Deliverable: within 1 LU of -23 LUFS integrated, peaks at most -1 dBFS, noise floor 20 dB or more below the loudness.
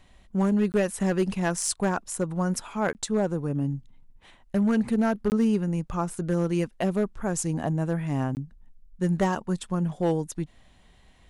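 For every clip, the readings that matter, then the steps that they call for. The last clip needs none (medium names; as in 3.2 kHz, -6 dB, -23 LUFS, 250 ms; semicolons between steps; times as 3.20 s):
clipped samples 0.8%; clipping level -16.5 dBFS; dropouts 4; longest dropout 19 ms; loudness -27.0 LUFS; peak level -16.5 dBFS; loudness target -23.0 LUFS
-> clip repair -16.5 dBFS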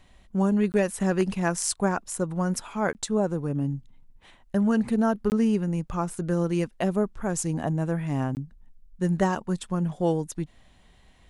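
clipped samples 0.0%; dropouts 4; longest dropout 19 ms
-> interpolate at 0.72/2.93/5.30/8.35 s, 19 ms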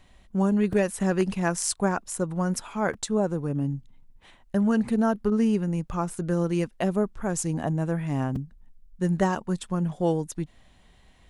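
dropouts 0; loudness -26.5 LUFS; peak level -9.5 dBFS; loudness target -23.0 LUFS
-> trim +3.5 dB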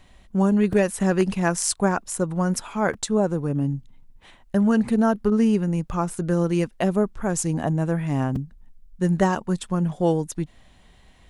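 loudness -23.0 LUFS; peak level -6.0 dBFS; noise floor -53 dBFS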